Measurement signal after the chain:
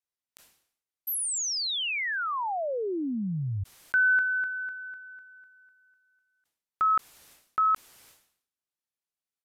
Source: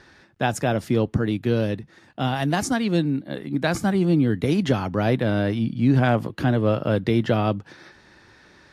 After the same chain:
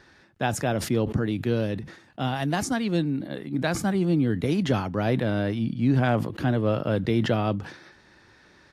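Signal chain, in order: downsampling 32000 Hz; sustainer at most 93 dB/s; gain -3.5 dB

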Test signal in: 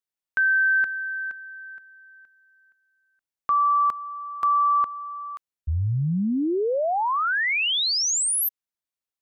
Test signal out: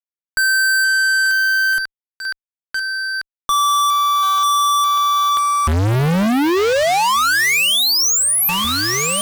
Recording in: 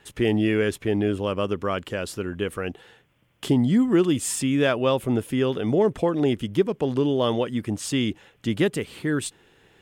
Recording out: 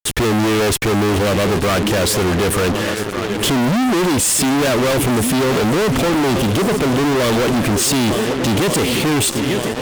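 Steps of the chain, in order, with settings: swung echo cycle 1.483 s, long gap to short 1.5:1, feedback 52%, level -21 dB; fuzz box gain 48 dB, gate -47 dBFS; gain -1.5 dB

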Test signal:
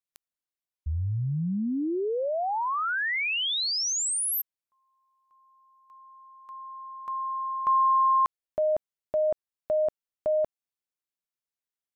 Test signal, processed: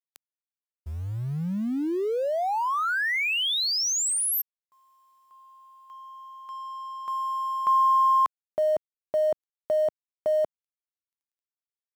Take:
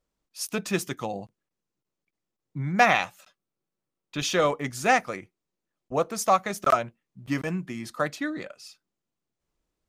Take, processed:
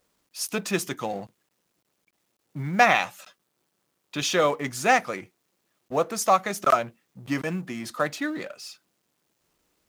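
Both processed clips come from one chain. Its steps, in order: G.711 law mismatch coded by mu; HPF 160 Hz 6 dB/oct; gain +1 dB

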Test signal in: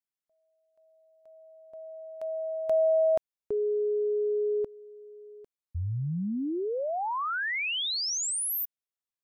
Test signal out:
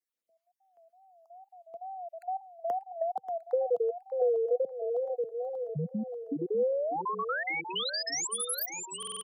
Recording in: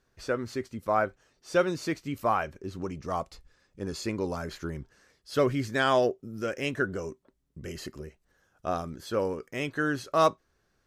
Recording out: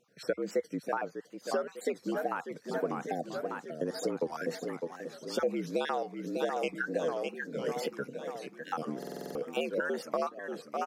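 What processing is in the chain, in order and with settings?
random spectral dropouts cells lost 39%; HPF 83 Hz 12 dB/oct; bell 4800 Hz -2.5 dB 2.9 oct; feedback echo 0.595 s, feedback 58%, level -10.5 dB; compressor 16:1, threshold -33 dBFS; frequency shift +74 Hz; wow and flutter 140 cents; bell 490 Hz +7.5 dB 0.21 oct; stuck buffer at 8.98, samples 2048, times 7; gain +3.5 dB

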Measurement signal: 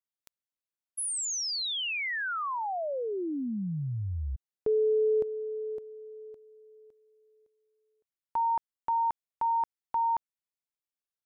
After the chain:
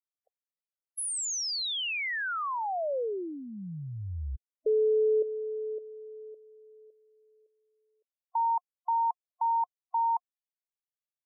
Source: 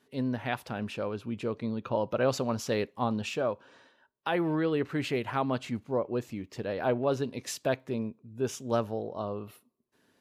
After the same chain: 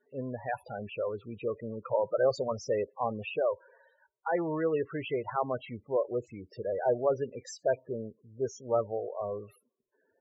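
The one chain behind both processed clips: ten-band EQ 125 Hz -4 dB, 250 Hz -9 dB, 500 Hz +4 dB; loudest bins only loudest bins 16

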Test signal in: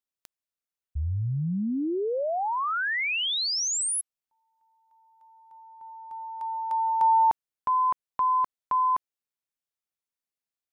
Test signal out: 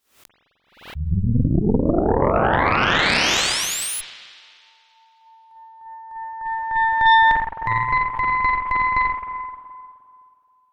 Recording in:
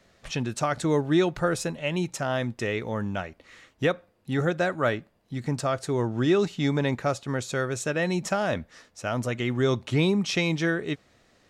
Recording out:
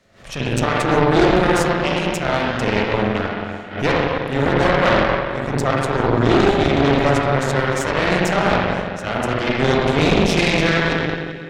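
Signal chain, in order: spring tank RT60 2.4 s, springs 43/52 ms, chirp 80 ms, DRR -6 dB; added harmonics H 6 -10 dB, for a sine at -5 dBFS; backwards sustainer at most 120 dB/s

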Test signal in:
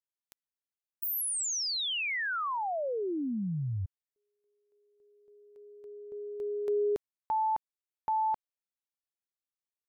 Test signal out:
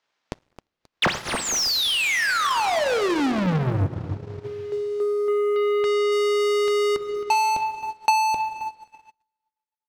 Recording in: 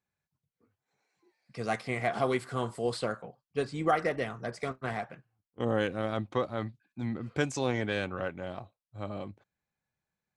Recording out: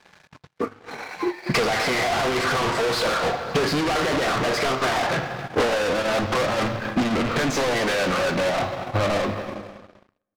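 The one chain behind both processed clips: ending faded out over 3.36 s; dynamic EQ 2900 Hz, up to -4 dB, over -50 dBFS, Q 1.1; in parallel at -2 dB: compressor, threshold -39 dBFS; on the sum: overdrive pedal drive 36 dB, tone 1700 Hz, clips at -14 dBFS; hard clip -29 dBFS; LPF 6100 Hz 24 dB/oct; on a send: feedback echo 0.266 s, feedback 35%, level -16 dB; on the sum: plate-style reverb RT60 1.6 s, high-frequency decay 0.75×, DRR 4.5 dB; sample leveller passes 3; transient shaper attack +8 dB, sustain -11 dB

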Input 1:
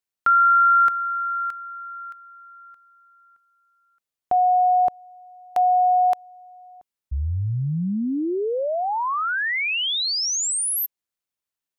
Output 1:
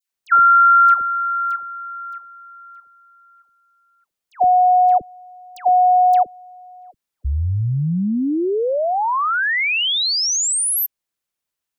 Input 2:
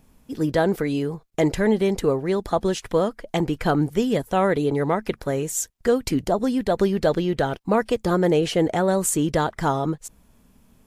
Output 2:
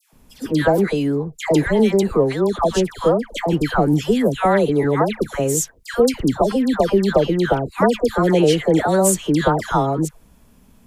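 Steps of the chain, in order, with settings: dispersion lows, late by 0.132 s, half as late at 1200 Hz; gain +4.5 dB

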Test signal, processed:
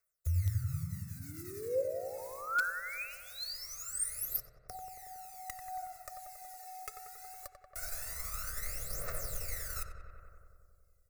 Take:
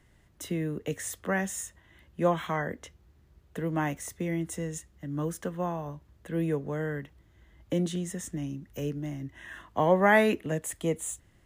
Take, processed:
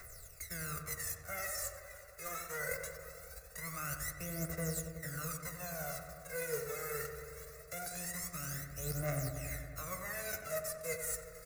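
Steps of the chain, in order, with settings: spectral whitening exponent 0.3; comb 1.5 ms, depth 54%; reverse; compressor 6:1, threshold -40 dBFS; reverse; phaser 0.22 Hz, delay 2.4 ms, feedback 75%; fixed phaser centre 860 Hz, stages 6; flange 0.54 Hz, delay 0.8 ms, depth 4.3 ms, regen -76%; darkening echo 92 ms, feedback 80%, low-pass 2000 Hz, level -6.5 dB; in parallel at -4 dB: wrapped overs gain 28 dB; on the sum: mismatched tape noise reduction encoder only; gain +1 dB

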